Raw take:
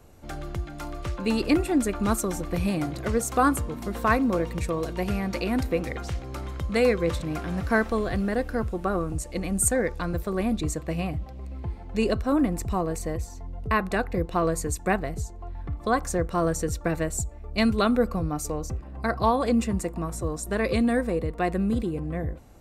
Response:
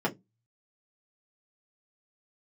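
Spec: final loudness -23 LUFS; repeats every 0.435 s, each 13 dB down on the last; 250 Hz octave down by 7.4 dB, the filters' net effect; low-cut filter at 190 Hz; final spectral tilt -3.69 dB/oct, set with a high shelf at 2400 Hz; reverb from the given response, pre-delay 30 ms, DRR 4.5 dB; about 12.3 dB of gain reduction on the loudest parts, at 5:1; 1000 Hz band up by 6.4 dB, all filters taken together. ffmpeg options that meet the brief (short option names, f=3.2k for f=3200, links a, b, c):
-filter_complex "[0:a]highpass=190,equalizer=f=250:t=o:g=-8,equalizer=f=1k:t=o:g=7.5,highshelf=f=2.4k:g=6,acompressor=threshold=-26dB:ratio=5,aecho=1:1:435|870|1305:0.224|0.0493|0.0108,asplit=2[a][b];[1:a]atrim=start_sample=2205,adelay=30[c];[b][c]afir=irnorm=-1:irlink=0,volume=-14dB[d];[a][d]amix=inputs=2:normalize=0,volume=6.5dB"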